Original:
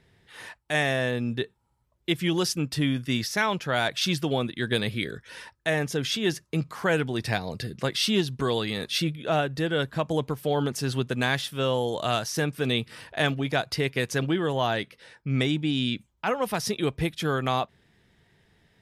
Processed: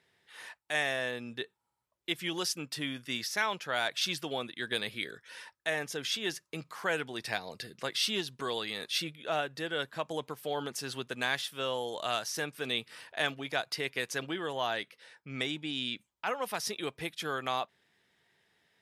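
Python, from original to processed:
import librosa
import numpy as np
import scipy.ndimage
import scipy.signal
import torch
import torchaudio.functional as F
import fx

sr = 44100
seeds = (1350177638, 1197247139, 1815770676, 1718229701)

y = fx.highpass(x, sr, hz=700.0, slope=6)
y = y * librosa.db_to_amplitude(-4.0)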